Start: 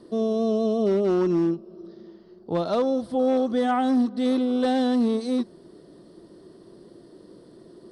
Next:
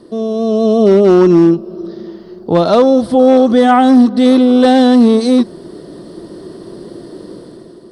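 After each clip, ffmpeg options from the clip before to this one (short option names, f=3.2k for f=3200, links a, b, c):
-filter_complex "[0:a]asplit=2[a][b];[b]alimiter=limit=-23dB:level=0:latency=1,volume=-1dB[c];[a][c]amix=inputs=2:normalize=0,dynaudnorm=f=170:g=7:m=9.5dB,volume=2.5dB"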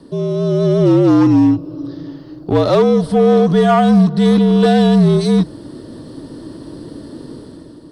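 -filter_complex "[0:a]asplit=2[a][b];[b]asoftclip=type=hard:threshold=-13dB,volume=-6dB[c];[a][c]amix=inputs=2:normalize=0,afreqshift=-55,volume=-4.5dB"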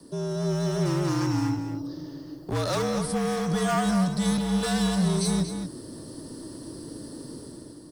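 -filter_complex "[0:a]acrossover=split=160|990|4100[a][b][c][d];[b]asoftclip=type=tanh:threshold=-21dB[e];[a][e][c][d]amix=inputs=4:normalize=0,aexciter=amount=4.4:drive=6:freq=5k,asplit=2[f][g];[g]adelay=233.2,volume=-7dB,highshelf=f=4k:g=-5.25[h];[f][h]amix=inputs=2:normalize=0,volume=-8.5dB"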